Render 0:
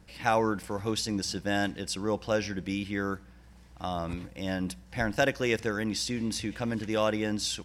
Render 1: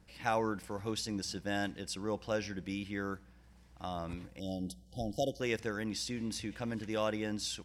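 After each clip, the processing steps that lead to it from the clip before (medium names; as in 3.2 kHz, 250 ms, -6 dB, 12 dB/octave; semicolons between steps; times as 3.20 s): spectral selection erased 4.40–5.41 s, 810–2900 Hz; trim -6.5 dB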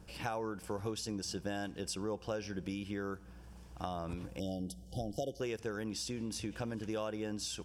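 compression 6:1, threshold -43 dBFS, peak gain reduction 15 dB; graphic EQ with 31 bands 250 Hz -3 dB, 400 Hz +4 dB, 2 kHz -10 dB, 4 kHz -6 dB; trim +7.5 dB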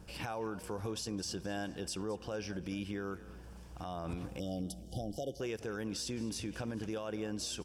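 frequency-shifting echo 213 ms, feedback 42%, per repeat +34 Hz, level -19.5 dB; peak limiter -31.5 dBFS, peak gain reduction 9.5 dB; trim +2 dB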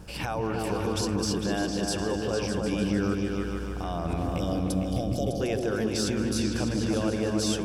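delay with an opening low-pass 151 ms, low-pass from 400 Hz, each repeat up 2 oct, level 0 dB; trim +8 dB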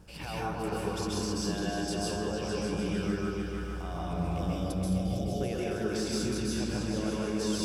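plate-style reverb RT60 0.52 s, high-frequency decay 1×, pre-delay 120 ms, DRR -3.5 dB; trim -9 dB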